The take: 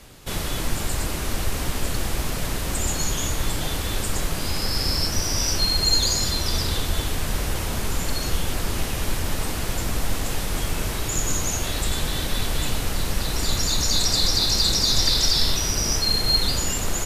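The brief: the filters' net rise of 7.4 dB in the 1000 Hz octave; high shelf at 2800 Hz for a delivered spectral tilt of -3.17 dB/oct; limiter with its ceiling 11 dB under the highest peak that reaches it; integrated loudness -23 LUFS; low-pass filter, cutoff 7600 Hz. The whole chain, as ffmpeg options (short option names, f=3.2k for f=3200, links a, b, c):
-af "lowpass=7.6k,equalizer=f=1k:t=o:g=8,highshelf=f=2.8k:g=9,volume=-1.5dB,alimiter=limit=-14dB:level=0:latency=1"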